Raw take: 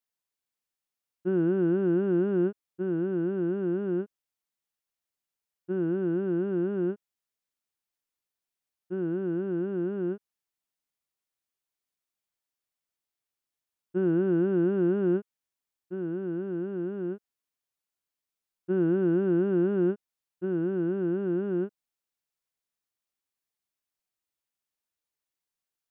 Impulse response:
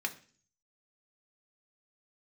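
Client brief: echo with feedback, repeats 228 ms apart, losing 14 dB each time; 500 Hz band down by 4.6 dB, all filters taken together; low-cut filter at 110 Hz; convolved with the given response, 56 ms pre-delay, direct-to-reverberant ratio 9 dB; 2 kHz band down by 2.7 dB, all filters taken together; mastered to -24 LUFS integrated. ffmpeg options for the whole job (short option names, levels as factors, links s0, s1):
-filter_complex "[0:a]highpass=110,equalizer=f=500:t=o:g=-8,equalizer=f=2000:t=o:g=-3.5,aecho=1:1:228|456:0.2|0.0399,asplit=2[s0][s1];[1:a]atrim=start_sample=2205,adelay=56[s2];[s1][s2]afir=irnorm=-1:irlink=0,volume=0.224[s3];[s0][s3]amix=inputs=2:normalize=0,volume=2.37"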